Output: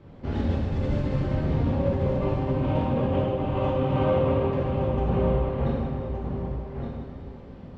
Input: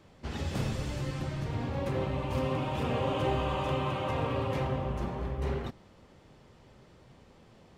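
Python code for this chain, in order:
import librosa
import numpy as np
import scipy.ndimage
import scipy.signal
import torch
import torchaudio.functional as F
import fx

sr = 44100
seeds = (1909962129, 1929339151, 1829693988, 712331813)

p1 = scipy.signal.sosfilt(scipy.signal.butter(2, 3700.0, 'lowpass', fs=sr, output='sos'), x)
p2 = fx.tilt_shelf(p1, sr, db=6.0, hz=660.0)
p3 = fx.over_compress(p2, sr, threshold_db=-30.0, ratio=-0.5)
p4 = p3 + fx.echo_single(p3, sr, ms=1169, db=-7.0, dry=0)
y = fx.rev_plate(p4, sr, seeds[0], rt60_s=2.0, hf_ratio=0.85, predelay_ms=0, drr_db=-4.5)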